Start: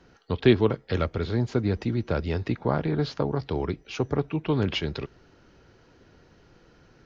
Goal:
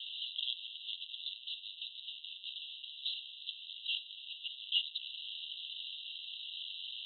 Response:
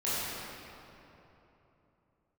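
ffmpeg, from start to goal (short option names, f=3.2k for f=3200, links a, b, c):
-af "aeval=exprs='val(0)+0.5*0.1*sgn(val(0))':c=same,asuperpass=centerf=3300:order=20:qfactor=2.7,aderivative,volume=1.5dB"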